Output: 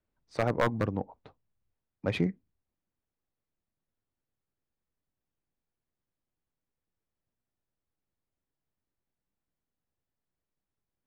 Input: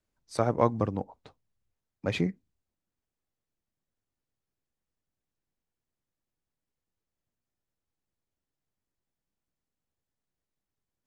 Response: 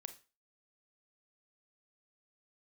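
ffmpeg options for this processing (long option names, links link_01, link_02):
-af "adynamicsmooth=sensitivity=3:basefreq=3300,aeval=exprs='0.168*(abs(mod(val(0)/0.168+3,4)-2)-1)':channel_layout=same"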